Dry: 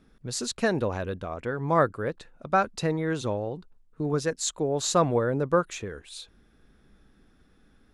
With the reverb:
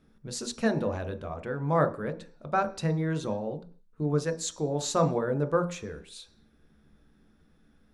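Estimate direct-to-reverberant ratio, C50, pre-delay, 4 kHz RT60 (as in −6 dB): 7.5 dB, 14.5 dB, 13 ms, can't be measured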